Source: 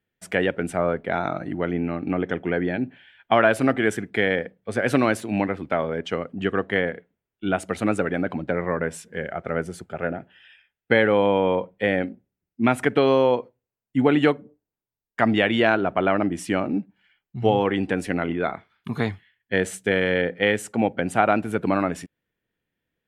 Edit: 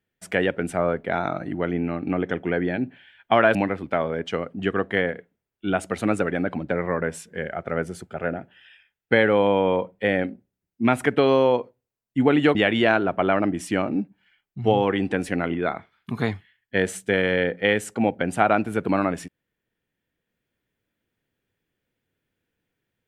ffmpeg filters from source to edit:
-filter_complex "[0:a]asplit=3[a][b][c];[a]atrim=end=3.552[d];[b]atrim=start=5.338:end=14.342[e];[c]atrim=start=15.328[f];[d][e]acrossfade=d=0.004:c1=hsin:c2=hsin[g];[g][f]acrossfade=d=0.004:c1=hsin:c2=hsin"

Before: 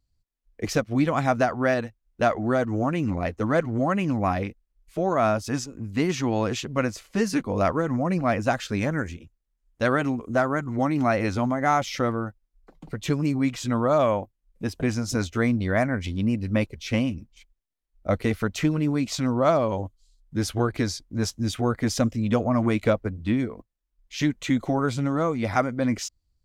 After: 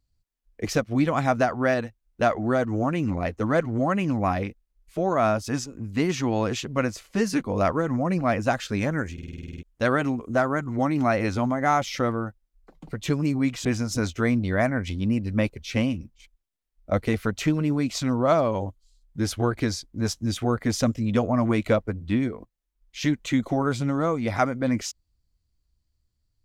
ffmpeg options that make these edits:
-filter_complex "[0:a]asplit=12[a][b][c][d][e][f][g][h][i][j][k][l];[a]atrim=end=9.182[m];[b]atrim=start=9.128:end=9.182[n];[c]atrim=start=9.128:end=9.182[o];[d]atrim=start=9.128:end=9.182[p];[e]atrim=start=9.128:end=9.182[q];[f]atrim=start=9.128:end=9.182[r];[g]atrim=start=9.128:end=9.182[s];[h]atrim=start=9.128:end=9.182[t];[i]atrim=start=9.128:end=9.182[u];[j]atrim=start=9.128:end=9.182[v];[k]atrim=start=9.628:end=13.652[w];[l]atrim=start=14.818[x];[m][n]acrossfade=d=0.004:c1=hsin:c2=hsin[y];[y][o]acrossfade=d=0.004:c1=hsin:c2=hsin[z];[z][p]acrossfade=d=0.004:c1=hsin:c2=hsin[aa];[aa][q]acrossfade=d=0.004:c1=hsin:c2=hsin[ab];[ab][r]acrossfade=d=0.004:c1=hsin:c2=hsin[ac];[ac][s]acrossfade=d=0.004:c1=hsin:c2=hsin[ad];[ad][t]acrossfade=d=0.004:c1=hsin:c2=hsin[ae];[ae][u]acrossfade=d=0.004:c1=hsin:c2=hsin[af];[af][v]acrossfade=d=0.004:c1=hsin:c2=hsin[ag];[ag][w]acrossfade=d=0.004:c1=hsin:c2=hsin[ah];[ah][x]acrossfade=d=0.004:c1=hsin:c2=hsin"

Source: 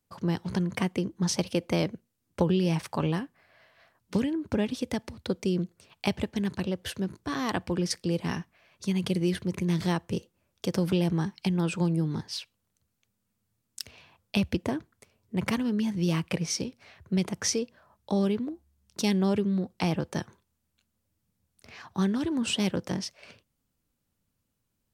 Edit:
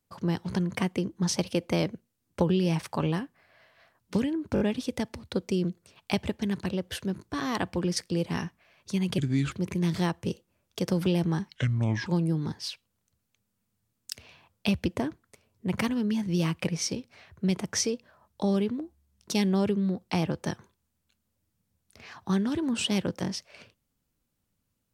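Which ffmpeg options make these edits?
-filter_complex "[0:a]asplit=8[a][b][c][d][e][f][g][h];[a]atrim=end=4.562[i];[b]atrim=start=4.538:end=4.562[j];[c]atrim=start=4.538:end=4.562[k];[d]atrim=start=4.538:end=9.124[l];[e]atrim=start=9.12:end=9.38,asetpts=PTS-STARTPTS,asetrate=33957,aresample=44100[m];[f]atrim=start=9.376:end=11.414[n];[g]atrim=start=11.41:end=11.75,asetpts=PTS-STARTPTS,asetrate=29106,aresample=44100,atrim=end_sample=22718,asetpts=PTS-STARTPTS[o];[h]atrim=start=11.746[p];[i][j]acrossfade=d=0.004:c1=hsin:c2=hsin[q];[q][k]acrossfade=d=0.004:c1=hsin:c2=hsin[r];[r][l]acrossfade=d=0.004:c1=hsin:c2=hsin[s];[s][m]acrossfade=d=0.004:c1=hsin:c2=hsin[t];[t][n]acrossfade=d=0.004:c1=hsin:c2=hsin[u];[u][o]acrossfade=d=0.004:c1=hsin:c2=hsin[v];[v][p]acrossfade=d=0.004:c1=hsin:c2=hsin"

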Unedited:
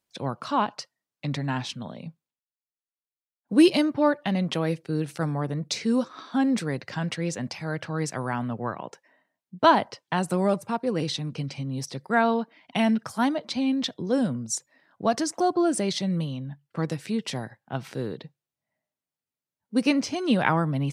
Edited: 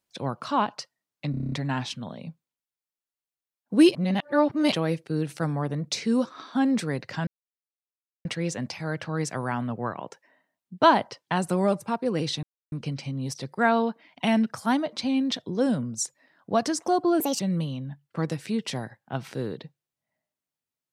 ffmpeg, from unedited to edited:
-filter_complex "[0:a]asplit=14[a][b][c][d][e][f][g][h][i][j][k][l][m][n];[a]atrim=end=1.342[o];[b]atrim=start=1.308:end=1.342[p];[c]atrim=start=1.308:end=1.342[q];[d]atrim=start=1.308:end=1.342[r];[e]atrim=start=1.308:end=1.342[s];[f]atrim=start=1.308:end=1.342[t];[g]atrim=start=1.308:end=1.342[u];[h]atrim=start=1.308:end=3.742[v];[i]atrim=start=3.738:end=4.512,asetpts=PTS-STARTPTS,areverse[w];[j]atrim=start=4.508:end=7.06,asetpts=PTS-STARTPTS,afade=t=out:st=2.548:d=0.004:c=hsin,apad=pad_dur=0.98[x];[k]atrim=start=7.06:end=11.24,asetpts=PTS-STARTPTS,afade=t=in:d=0.004:c=hsin,afade=t=out:st=4.176:d=0.004:c=hsin,apad=pad_dur=0.29[y];[l]atrim=start=11.24:end=15.724,asetpts=PTS-STARTPTS,afade=t=in:d=0.004:c=hsin[z];[m]atrim=start=15.72:end=16,asetpts=PTS-STARTPTS,asetrate=61740,aresample=44100[aa];[n]atrim=start=15.996[ab];[o][p]acrossfade=d=0.004:c1=hsin:c2=hsin[ac];[ac][q]acrossfade=d=0.004:c1=hsin:c2=hsin[ad];[ad][r]acrossfade=d=0.004:c1=hsin:c2=hsin[ae];[ae][s]acrossfade=d=0.004:c1=hsin:c2=hsin[af];[af][t]acrossfade=d=0.004:c1=hsin:c2=hsin[ag];[ag][u]acrossfade=d=0.004:c1=hsin:c2=hsin[ah];[ah][v]acrossfade=d=0.004:c1=hsin:c2=hsin[ai];[ai][w]acrossfade=d=0.004:c1=hsin:c2=hsin[aj];[x][y][z]concat=n=3:v=0:a=1[ak];[aj][ak]acrossfade=d=0.004:c1=hsin:c2=hsin[al];[al][aa]acrossfade=d=0.004:c1=hsin:c2=hsin[am];[am][ab]acrossfade=d=0.004:c1=hsin:c2=hsin"

